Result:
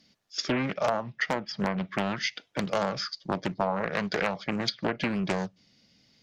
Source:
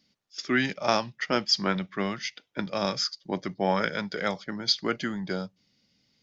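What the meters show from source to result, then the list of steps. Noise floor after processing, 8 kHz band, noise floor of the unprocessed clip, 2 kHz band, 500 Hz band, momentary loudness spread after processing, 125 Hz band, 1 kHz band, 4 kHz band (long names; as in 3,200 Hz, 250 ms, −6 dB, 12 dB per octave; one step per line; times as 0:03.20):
−66 dBFS, can't be measured, −71 dBFS, −1.0 dB, 0.0 dB, 4 LU, +1.5 dB, −0.5 dB, −5.5 dB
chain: treble cut that deepens with the level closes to 1,200 Hz, closed at −21 dBFS
downward compressor 16 to 1, threshold −29 dBFS, peak gain reduction 11.5 dB
wave folding −20.5 dBFS
hollow resonant body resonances 670/1,700 Hz, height 6 dB
highs frequency-modulated by the lows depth 0.6 ms
level +6 dB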